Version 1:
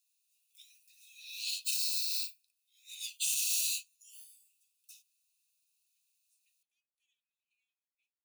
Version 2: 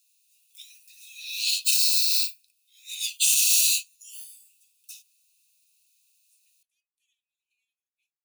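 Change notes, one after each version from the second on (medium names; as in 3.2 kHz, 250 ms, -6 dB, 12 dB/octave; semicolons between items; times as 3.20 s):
speech: add tilt EQ +3 dB/octave; background +11.5 dB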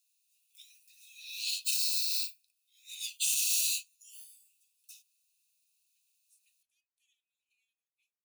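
background -9.0 dB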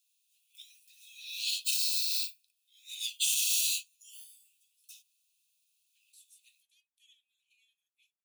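first voice +7.5 dB; second voice: unmuted; master: add peaking EQ 3.3 kHz +10 dB 0.21 oct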